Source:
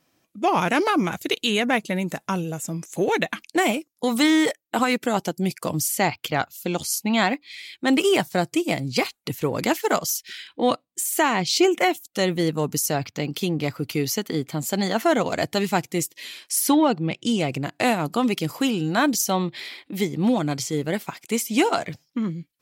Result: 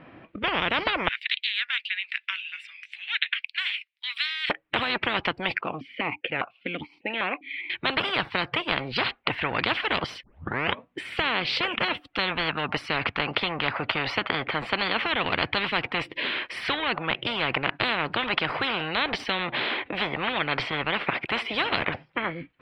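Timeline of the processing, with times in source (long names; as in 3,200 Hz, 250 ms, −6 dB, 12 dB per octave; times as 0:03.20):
0:01.08–0:04.50: Butterworth high-pass 2,200 Hz
0:05.61–0:07.70: formant filter that steps through the vowels 5 Hz
0:10.23: tape start 0.64 s
whole clip: inverse Chebyshev low-pass filter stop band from 6,200 Hz, stop band 50 dB; dynamic equaliser 940 Hz, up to +4 dB, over −35 dBFS, Q 0.7; every bin compressed towards the loudest bin 10 to 1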